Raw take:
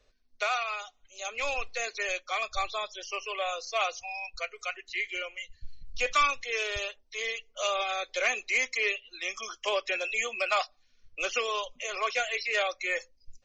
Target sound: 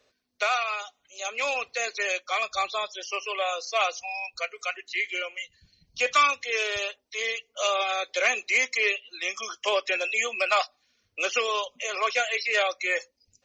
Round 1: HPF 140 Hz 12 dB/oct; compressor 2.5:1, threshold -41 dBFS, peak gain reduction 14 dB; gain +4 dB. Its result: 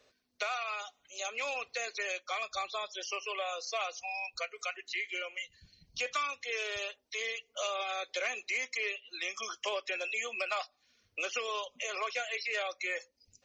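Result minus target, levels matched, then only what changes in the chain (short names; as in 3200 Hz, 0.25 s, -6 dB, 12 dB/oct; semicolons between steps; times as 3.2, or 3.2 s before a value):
compressor: peak gain reduction +14 dB
remove: compressor 2.5:1, threshold -41 dBFS, peak gain reduction 14 dB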